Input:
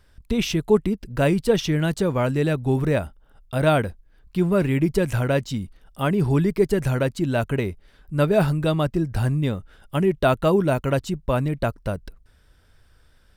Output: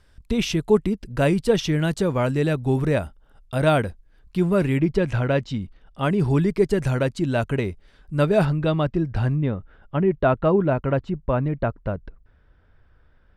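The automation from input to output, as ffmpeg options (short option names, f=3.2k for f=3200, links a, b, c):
-af "asetnsamples=n=441:p=0,asendcmd='4.79 lowpass f 4100;6.03 lowpass f 8600;8.45 lowpass f 3700;9.36 lowpass f 1900',lowpass=11k"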